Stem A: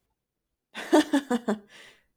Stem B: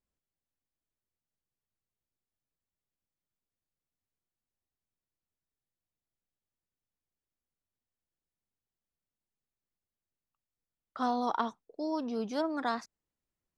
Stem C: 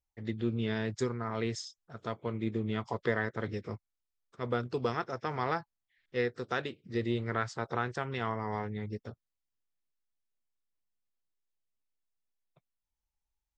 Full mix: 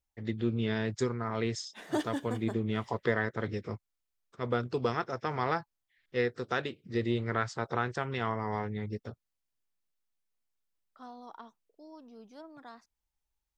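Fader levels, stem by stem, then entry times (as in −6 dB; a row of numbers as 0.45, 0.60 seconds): −11.5, −17.0, +1.5 decibels; 1.00, 0.00, 0.00 seconds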